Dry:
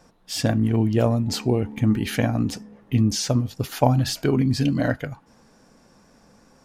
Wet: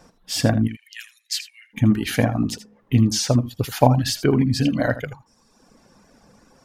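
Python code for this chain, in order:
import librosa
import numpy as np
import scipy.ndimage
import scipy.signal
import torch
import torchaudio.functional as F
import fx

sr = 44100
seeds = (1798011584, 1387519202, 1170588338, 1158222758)

y = fx.dereverb_blind(x, sr, rt60_s=1.0)
y = fx.cheby1_highpass(y, sr, hz=1700.0, order=6, at=(0.67, 1.73), fade=0.02)
y = y + 10.0 ** (-14.0 / 20.0) * np.pad(y, (int(80 * sr / 1000.0), 0))[:len(y)]
y = y * 10.0 ** (3.5 / 20.0)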